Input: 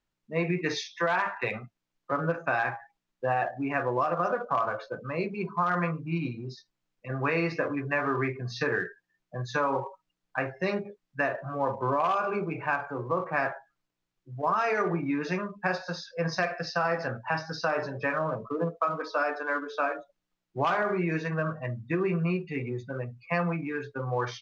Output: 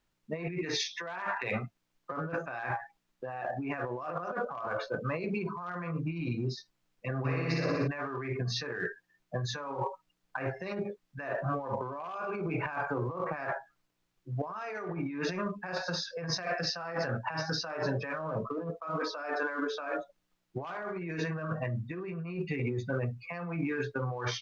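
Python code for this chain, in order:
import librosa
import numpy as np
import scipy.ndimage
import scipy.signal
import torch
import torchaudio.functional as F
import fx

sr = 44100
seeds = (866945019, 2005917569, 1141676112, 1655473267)

y = fx.over_compress(x, sr, threshold_db=-35.0, ratio=-1.0)
y = fx.room_flutter(y, sr, wall_m=10.4, rt60_s=1.5, at=(7.24, 7.86), fade=0.02)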